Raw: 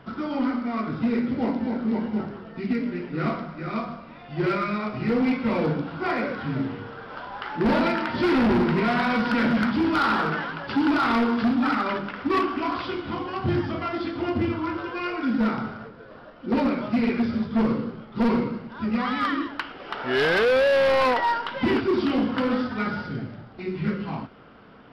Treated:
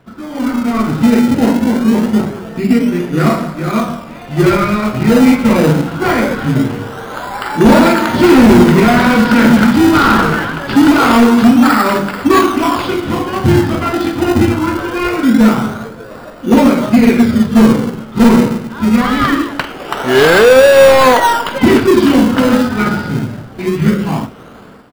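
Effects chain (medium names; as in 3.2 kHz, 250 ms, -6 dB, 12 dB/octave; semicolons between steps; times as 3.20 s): level rider gain up to 15 dB; doubling 46 ms -12.5 dB; in parallel at -6 dB: decimation with a swept rate 27×, swing 100% 0.23 Hz; on the sum: trim -3 dB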